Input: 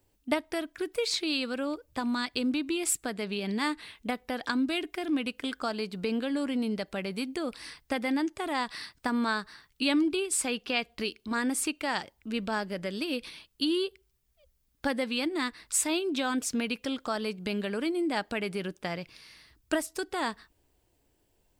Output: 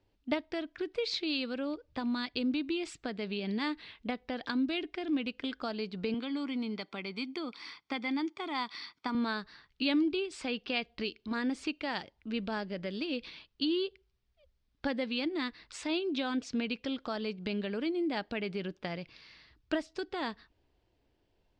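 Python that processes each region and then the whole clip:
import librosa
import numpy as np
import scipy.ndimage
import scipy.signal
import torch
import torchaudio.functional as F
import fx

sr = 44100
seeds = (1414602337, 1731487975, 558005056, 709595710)

y = fx.chain(x, sr, fx.highpass(hz=290.0, slope=12),
    fx.comb(ms=0.9, depth=0.6), at=(6.14, 9.15))
y = scipy.signal.sosfilt(scipy.signal.butter(4, 4800.0, 'lowpass', fs=sr, output='sos'), y)
y = fx.dynamic_eq(y, sr, hz=1200.0, q=0.79, threshold_db=-43.0, ratio=4.0, max_db=-5)
y = y * librosa.db_to_amplitude(-2.0)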